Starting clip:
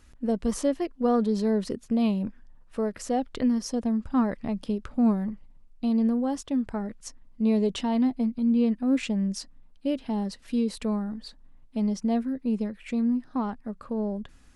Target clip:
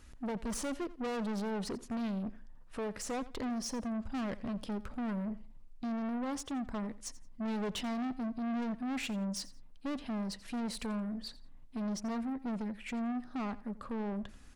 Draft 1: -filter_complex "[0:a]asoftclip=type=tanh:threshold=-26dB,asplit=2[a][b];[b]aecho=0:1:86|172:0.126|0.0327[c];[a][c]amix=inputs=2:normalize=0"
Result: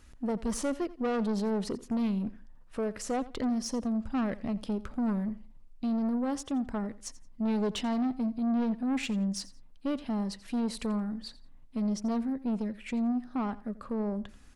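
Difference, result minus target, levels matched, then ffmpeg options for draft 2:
soft clip: distortion -5 dB
-filter_complex "[0:a]asoftclip=type=tanh:threshold=-34dB,asplit=2[a][b];[b]aecho=0:1:86|172:0.126|0.0327[c];[a][c]amix=inputs=2:normalize=0"

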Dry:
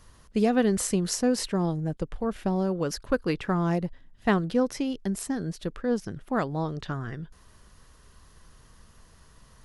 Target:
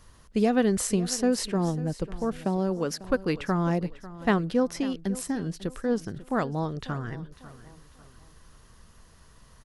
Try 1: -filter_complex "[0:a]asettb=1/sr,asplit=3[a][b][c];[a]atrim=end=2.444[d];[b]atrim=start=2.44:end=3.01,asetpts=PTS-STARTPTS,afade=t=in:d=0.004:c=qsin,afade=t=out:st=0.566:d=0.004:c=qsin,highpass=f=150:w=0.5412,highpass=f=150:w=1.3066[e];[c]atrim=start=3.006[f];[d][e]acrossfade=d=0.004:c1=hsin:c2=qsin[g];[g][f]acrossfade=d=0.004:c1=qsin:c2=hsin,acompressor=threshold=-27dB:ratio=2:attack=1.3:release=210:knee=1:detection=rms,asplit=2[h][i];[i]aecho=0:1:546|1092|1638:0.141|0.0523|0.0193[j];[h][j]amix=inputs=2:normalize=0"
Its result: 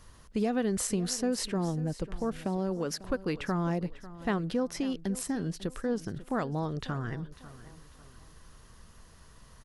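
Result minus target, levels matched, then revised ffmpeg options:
compressor: peak gain reduction +7.5 dB
-filter_complex "[0:a]asettb=1/sr,asplit=3[a][b][c];[a]atrim=end=2.444[d];[b]atrim=start=2.44:end=3.01,asetpts=PTS-STARTPTS,afade=t=in:d=0.004:c=qsin,afade=t=out:st=0.566:d=0.004:c=qsin,highpass=f=150:w=0.5412,highpass=f=150:w=1.3066[e];[c]atrim=start=3.006[f];[d][e]acrossfade=d=0.004:c1=hsin:c2=qsin[g];[g][f]acrossfade=d=0.004:c1=qsin:c2=hsin,asplit=2[h][i];[i]aecho=0:1:546|1092|1638:0.141|0.0523|0.0193[j];[h][j]amix=inputs=2:normalize=0"

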